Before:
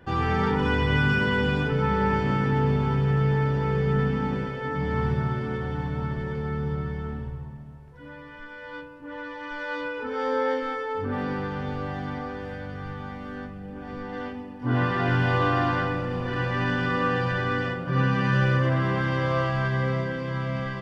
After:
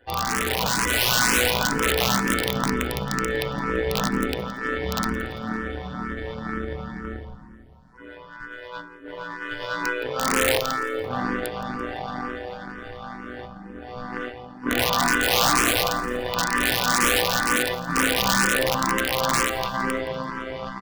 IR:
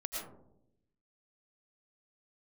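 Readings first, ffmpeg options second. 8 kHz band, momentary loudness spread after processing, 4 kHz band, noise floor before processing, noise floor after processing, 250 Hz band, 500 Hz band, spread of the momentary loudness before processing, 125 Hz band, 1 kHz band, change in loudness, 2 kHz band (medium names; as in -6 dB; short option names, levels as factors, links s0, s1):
no reading, 18 LU, +12.5 dB, -42 dBFS, -43 dBFS, -0.5 dB, +1.0 dB, 15 LU, -9.5 dB, +3.5 dB, +3.0 dB, +4.5 dB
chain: -filter_complex "[0:a]equalizer=f=1100:w=1.5:g=5,aecho=1:1:4:0.94,aeval=exprs='0.473*(cos(1*acos(clip(val(0)/0.473,-1,1)))-cos(1*PI/2))+0.00841*(cos(2*acos(clip(val(0)/0.473,-1,1)))-cos(2*PI/2))+0.0335*(cos(4*acos(clip(val(0)/0.473,-1,1)))-cos(4*PI/2))+0.00335*(cos(5*acos(clip(val(0)/0.473,-1,1)))-cos(5*PI/2))+0.0211*(cos(7*acos(clip(val(0)/0.473,-1,1)))-cos(7*PI/2))':c=same,equalizer=f=4500:w=1.5:g=5,bandreject=f=50:t=h:w=6,bandreject=f=100:t=h:w=6,bandreject=f=150:t=h:w=6,bandreject=f=200:t=h:w=6,bandreject=f=250:t=h:w=6,bandreject=f=300:t=h:w=6,asplit=2[s0][s1];[s1]aeval=exprs='sgn(val(0))*max(abs(val(0))-0.0211,0)':c=same,volume=0.473[s2];[s0][s2]amix=inputs=2:normalize=0,tremolo=f=120:d=0.788,aeval=exprs='(mod(3.98*val(0)+1,2)-1)/3.98':c=same,aecho=1:1:169|338|507:0.133|0.0547|0.0224,dynaudnorm=f=160:g=13:m=1.58,asplit=2[s3][s4];[s4]afreqshift=2.1[s5];[s3][s5]amix=inputs=2:normalize=1"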